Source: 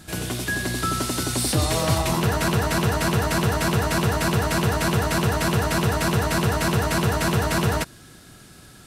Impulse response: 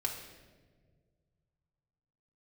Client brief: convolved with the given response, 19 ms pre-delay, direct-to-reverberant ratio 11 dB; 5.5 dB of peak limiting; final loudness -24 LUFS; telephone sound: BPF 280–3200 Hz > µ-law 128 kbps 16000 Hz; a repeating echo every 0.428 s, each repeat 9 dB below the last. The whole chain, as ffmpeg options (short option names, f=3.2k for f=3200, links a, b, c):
-filter_complex "[0:a]alimiter=limit=-14dB:level=0:latency=1,aecho=1:1:428|856|1284|1712:0.355|0.124|0.0435|0.0152,asplit=2[a][b];[1:a]atrim=start_sample=2205,adelay=19[c];[b][c]afir=irnorm=-1:irlink=0,volume=-14dB[d];[a][d]amix=inputs=2:normalize=0,highpass=280,lowpass=3.2k,volume=2.5dB" -ar 16000 -c:a pcm_mulaw